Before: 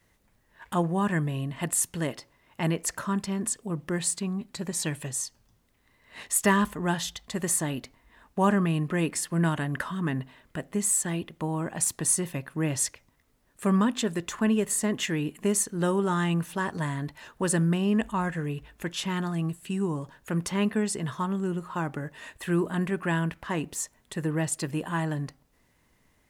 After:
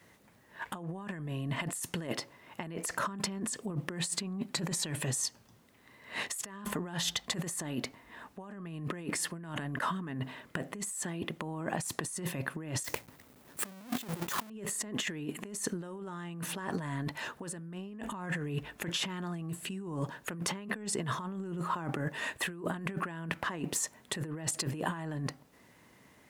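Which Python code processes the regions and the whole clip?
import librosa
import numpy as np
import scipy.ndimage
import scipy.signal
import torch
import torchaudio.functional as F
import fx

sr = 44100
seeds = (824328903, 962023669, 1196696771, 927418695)

y = fx.chain(x, sr, fx.halfwave_hold(),
    fx.high_shelf(hz=9500.0, db=12.0), at=(12.84, 14.5))
y = scipy.signal.sosfilt(scipy.signal.butter(2, 130.0, 'highpass', fs=sr, output='sos'), y)
y = fx.high_shelf(y, sr, hz=3600.0, db=-4.0)
y = fx.over_compress(y, sr, threshold_db=-38.0, ratio=-1.0)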